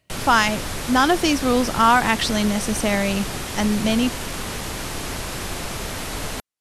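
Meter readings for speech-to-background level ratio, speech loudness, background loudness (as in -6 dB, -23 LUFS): 8.5 dB, -20.0 LUFS, -28.5 LUFS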